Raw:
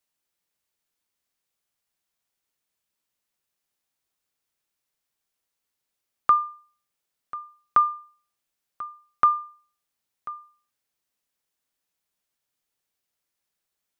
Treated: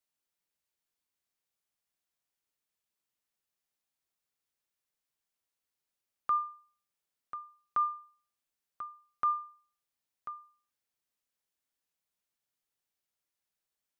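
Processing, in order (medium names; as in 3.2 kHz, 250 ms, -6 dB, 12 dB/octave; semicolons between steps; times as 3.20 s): peak limiter -16.5 dBFS, peak gain reduction 7.5 dB; trim -6.5 dB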